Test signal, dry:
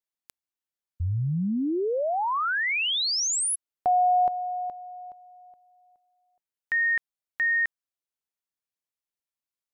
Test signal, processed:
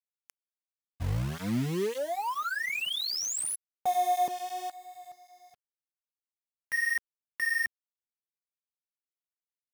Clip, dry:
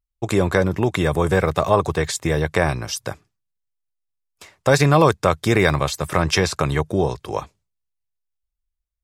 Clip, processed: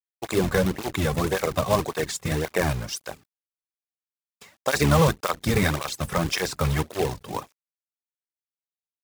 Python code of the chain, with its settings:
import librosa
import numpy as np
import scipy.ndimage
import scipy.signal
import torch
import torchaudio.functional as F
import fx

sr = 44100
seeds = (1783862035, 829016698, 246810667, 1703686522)

y = fx.octave_divider(x, sr, octaves=1, level_db=-1.0)
y = fx.quant_companded(y, sr, bits=4)
y = fx.flanger_cancel(y, sr, hz=1.8, depth_ms=3.4)
y = y * 10.0 ** (-3.0 / 20.0)